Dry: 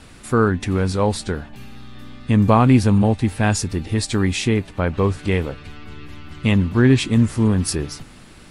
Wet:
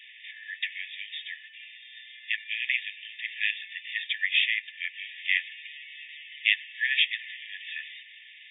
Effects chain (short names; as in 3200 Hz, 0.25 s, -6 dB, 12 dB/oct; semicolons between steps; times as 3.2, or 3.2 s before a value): brick-wall FIR band-pass 1700–3700 Hz; gain +4.5 dB